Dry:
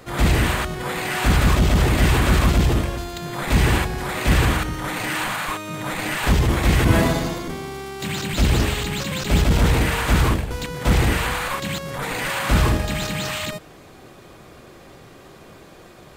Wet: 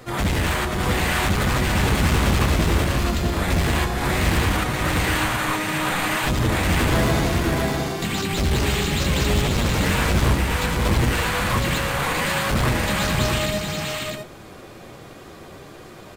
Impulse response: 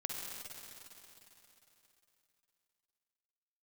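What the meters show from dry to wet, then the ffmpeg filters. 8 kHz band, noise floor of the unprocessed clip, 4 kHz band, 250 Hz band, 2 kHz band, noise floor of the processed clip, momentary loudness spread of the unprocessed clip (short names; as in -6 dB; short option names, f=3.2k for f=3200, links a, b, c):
+1.5 dB, -45 dBFS, +1.5 dB, 0.0 dB, +1.0 dB, -41 dBFS, 10 LU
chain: -af "asoftclip=type=hard:threshold=-19dB,flanger=delay=7.8:depth=7.3:regen=44:speed=0.63:shape=triangular,aecho=1:1:534|647:0.562|0.562,volume=5dB"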